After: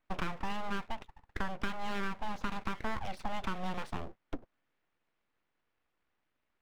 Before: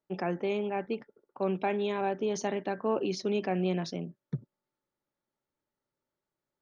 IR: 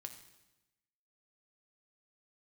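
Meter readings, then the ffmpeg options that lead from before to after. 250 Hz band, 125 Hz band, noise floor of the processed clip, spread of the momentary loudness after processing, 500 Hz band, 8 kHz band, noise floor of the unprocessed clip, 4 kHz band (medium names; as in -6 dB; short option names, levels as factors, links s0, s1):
-8.0 dB, -7.0 dB, -82 dBFS, 8 LU, -15.0 dB, no reading, under -85 dBFS, -2.5 dB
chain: -filter_complex "[0:a]lowpass=3900,acrossover=split=460 2600:gain=0.224 1 0.1[s0][s1][s2];[s0][s1][s2]amix=inputs=3:normalize=0,acompressor=threshold=0.00631:ratio=6,aeval=exprs='abs(val(0))':c=same,volume=4.47"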